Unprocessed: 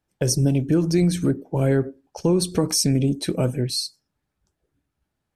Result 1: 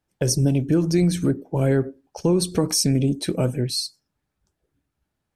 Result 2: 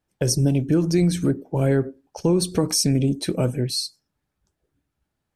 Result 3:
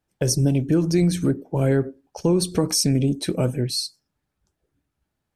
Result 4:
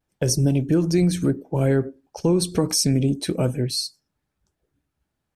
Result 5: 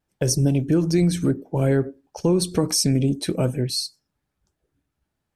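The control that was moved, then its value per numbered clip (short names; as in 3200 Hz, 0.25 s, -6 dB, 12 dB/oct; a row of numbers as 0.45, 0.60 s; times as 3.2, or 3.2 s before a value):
vibrato, rate: 11, 2.5, 4.6, 0.3, 0.62 Hz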